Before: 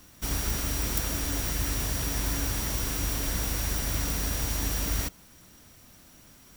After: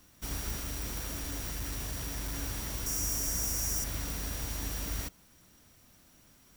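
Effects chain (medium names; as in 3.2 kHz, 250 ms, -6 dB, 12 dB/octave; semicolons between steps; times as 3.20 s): 0.57–2.35 s: overload inside the chain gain 25 dB; 2.86–3.84 s: resonant high shelf 4.9 kHz +6 dB, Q 3; trim -7 dB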